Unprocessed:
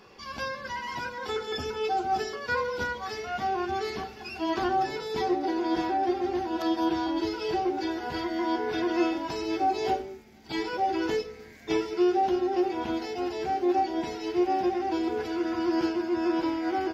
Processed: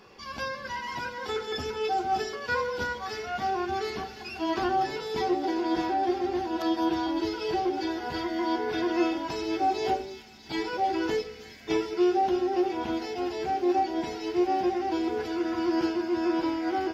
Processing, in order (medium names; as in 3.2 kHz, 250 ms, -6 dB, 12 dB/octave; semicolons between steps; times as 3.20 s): feedback echo behind a high-pass 322 ms, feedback 72%, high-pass 2.6 kHz, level -10.5 dB